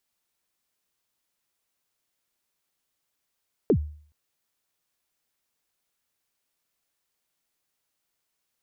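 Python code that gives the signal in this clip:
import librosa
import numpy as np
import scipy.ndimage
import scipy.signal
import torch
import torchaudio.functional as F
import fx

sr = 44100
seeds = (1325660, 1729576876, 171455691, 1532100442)

y = fx.drum_kick(sr, seeds[0], length_s=0.42, level_db=-13.5, start_hz=500.0, end_hz=75.0, sweep_ms=76.0, decay_s=0.5, click=False)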